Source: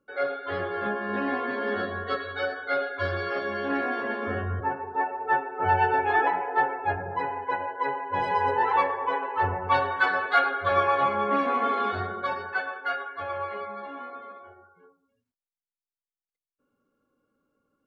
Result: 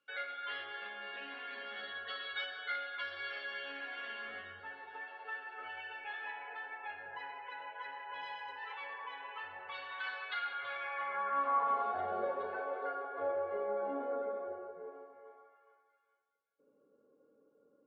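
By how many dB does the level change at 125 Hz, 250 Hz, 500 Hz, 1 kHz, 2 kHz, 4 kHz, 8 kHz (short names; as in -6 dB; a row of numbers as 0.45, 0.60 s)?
under -30 dB, -19.0 dB, -11.5 dB, -14.0 dB, -11.5 dB, -5.0 dB, n/a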